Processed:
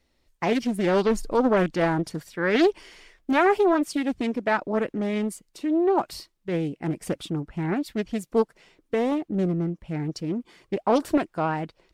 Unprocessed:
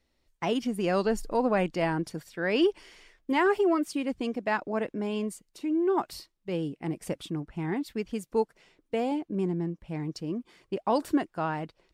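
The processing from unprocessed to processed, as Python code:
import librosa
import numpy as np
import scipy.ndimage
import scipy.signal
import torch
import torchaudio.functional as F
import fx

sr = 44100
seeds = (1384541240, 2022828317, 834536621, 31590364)

y = fx.wow_flutter(x, sr, seeds[0], rate_hz=2.1, depth_cents=25.0)
y = fx.doppler_dist(y, sr, depth_ms=0.46)
y = y * 10.0 ** (4.5 / 20.0)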